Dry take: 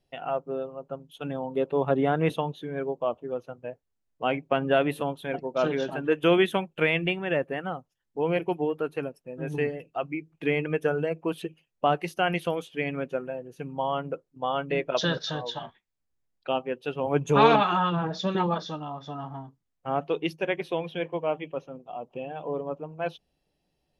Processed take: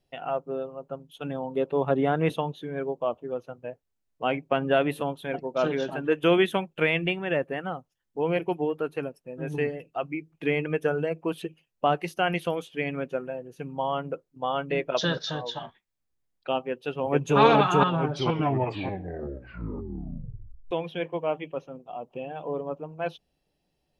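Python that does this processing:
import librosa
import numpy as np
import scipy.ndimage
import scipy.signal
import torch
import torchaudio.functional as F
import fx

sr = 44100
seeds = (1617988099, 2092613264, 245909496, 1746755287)

y = fx.echo_throw(x, sr, start_s=16.68, length_s=0.71, ms=440, feedback_pct=50, wet_db=-0.5)
y = fx.edit(y, sr, fx.tape_stop(start_s=17.89, length_s=2.82), tone=tone)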